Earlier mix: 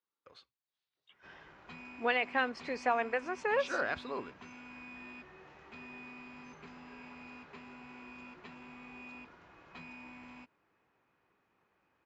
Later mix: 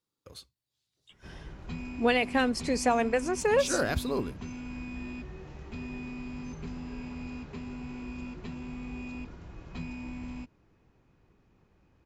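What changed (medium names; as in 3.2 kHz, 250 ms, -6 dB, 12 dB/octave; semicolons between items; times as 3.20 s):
speech: remove distance through air 120 m; master: remove band-pass filter 1.5 kHz, Q 0.77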